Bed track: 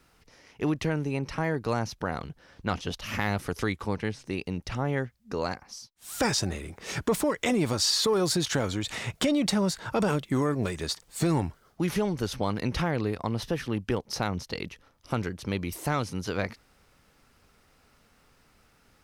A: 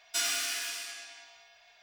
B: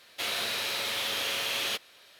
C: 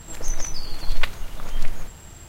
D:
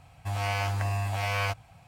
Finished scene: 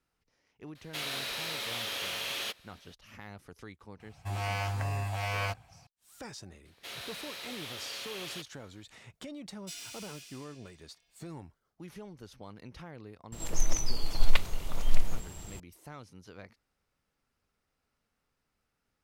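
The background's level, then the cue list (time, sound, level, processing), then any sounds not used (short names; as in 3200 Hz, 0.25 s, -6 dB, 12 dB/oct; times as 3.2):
bed track -19 dB
0.75 add B -5 dB
4 add D -4 dB
6.65 add B -11.5 dB
9.53 add A -13.5 dB + band shelf 1100 Hz -10 dB
13.32 add C -2 dB + bell 1600 Hz -5.5 dB 0.69 oct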